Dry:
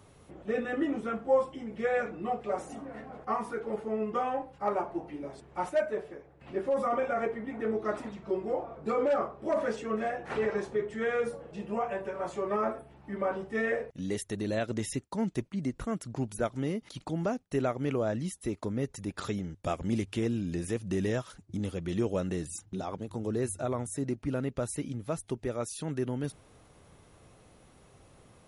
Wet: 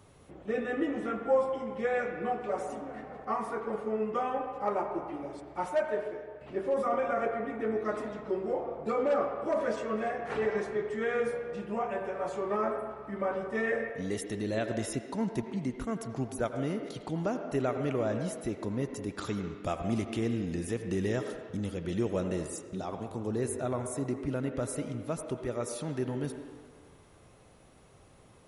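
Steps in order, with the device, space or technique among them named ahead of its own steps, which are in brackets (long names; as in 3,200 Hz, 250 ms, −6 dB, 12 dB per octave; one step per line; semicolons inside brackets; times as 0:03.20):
filtered reverb send (on a send: high-pass filter 290 Hz + low-pass filter 3,200 Hz 12 dB per octave + convolution reverb RT60 1.7 s, pre-delay 74 ms, DRR 5.5 dB)
on the sum: level −1 dB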